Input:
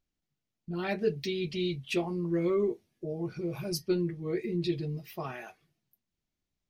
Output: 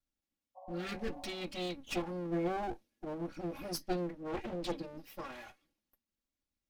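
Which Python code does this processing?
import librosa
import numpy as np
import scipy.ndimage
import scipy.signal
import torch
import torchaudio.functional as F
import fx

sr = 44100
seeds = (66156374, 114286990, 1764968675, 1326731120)

y = fx.lower_of_two(x, sr, delay_ms=3.6)
y = fx.spec_repair(y, sr, seeds[0], start_s=0.59, length_s=0.82, low_hz=540.0, high_hz=1100.0, source='after')
y = fx.doppler_dist(y, sr, depth_ms=0.89, at=(4.13, 4.72))
y = y * 10.0 ** (-4.0 / 20.0)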